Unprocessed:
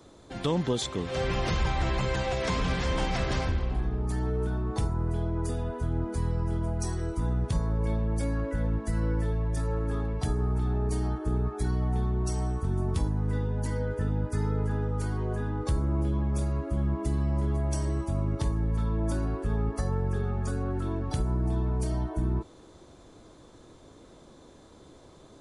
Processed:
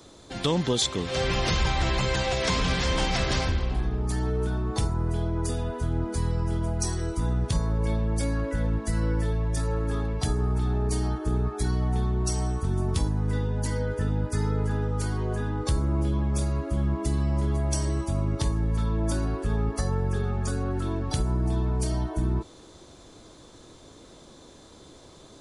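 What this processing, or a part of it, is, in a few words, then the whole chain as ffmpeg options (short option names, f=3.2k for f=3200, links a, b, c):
presence and air boost: -af "equalizer=f=4.5k:t=o:w=1.9:g=6,highshelf=f=9k:g=6,volume=2dB"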